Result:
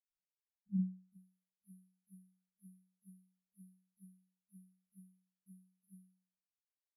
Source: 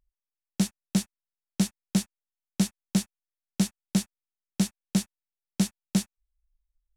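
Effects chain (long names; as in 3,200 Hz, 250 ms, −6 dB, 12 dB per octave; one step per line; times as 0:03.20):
reversed piece by piece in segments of 195 ms
linear-phase brick-wall band-stop 230–10,000 Hz
resonators tuned to a chord F#3 fifth, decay 0.51 s
band-pass filter sweep 200 Hz → 2,200 Hz, 0:00.67–0:01.46
level +10.5 dB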